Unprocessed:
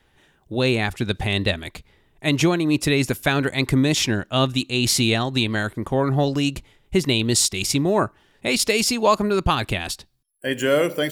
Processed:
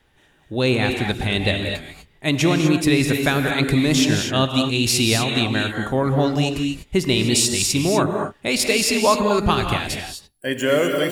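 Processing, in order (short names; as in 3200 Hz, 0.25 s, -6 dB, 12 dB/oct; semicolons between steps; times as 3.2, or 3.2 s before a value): non-linear reverb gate 0.27 s rising, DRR 3 dB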